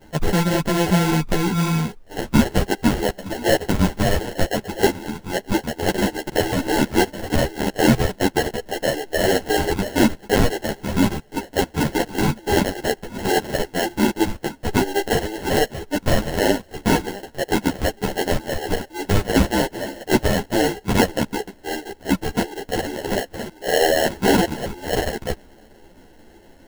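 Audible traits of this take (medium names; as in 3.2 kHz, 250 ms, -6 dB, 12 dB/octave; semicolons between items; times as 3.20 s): aliases and images of a low sample rate 1.2 kHz, jitter 0%; a shimmering, thickened sound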